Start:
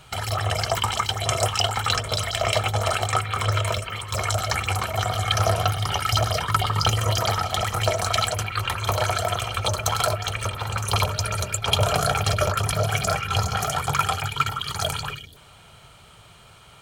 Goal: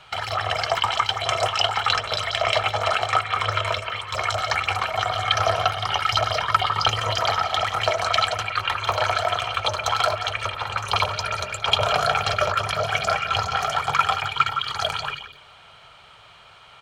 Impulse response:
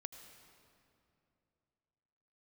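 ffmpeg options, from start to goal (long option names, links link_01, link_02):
-filter_complex "[0:a]acrossover=split=540 5000:gain=0.251 1 0.112[link_01][link_02][link_03];[link_01][link_02][link_03]amix=inputs=3:normalize=0,asplit=2[link_04][link_05];[link_05]adelay=174.9,volume=-13dB,highshelf=frequency=4000:gain=-3.94[link_06];[link_04][link_06]amix=inputs=2:normalize=0,volume=3.5dB"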